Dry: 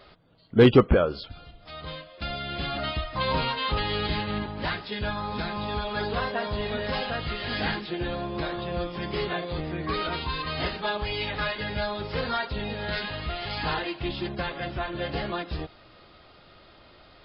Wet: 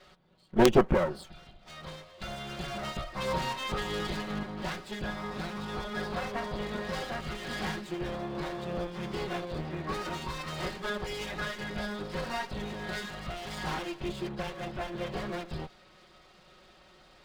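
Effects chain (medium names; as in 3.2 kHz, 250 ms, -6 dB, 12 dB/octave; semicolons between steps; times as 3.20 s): comb filter that takes the minimum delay 5.4 ms; dynamic bell 3.5 kHz, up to -5 dB, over -45 dBFS, Q 0.74; integer overflow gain 6 dB; trim -3 dB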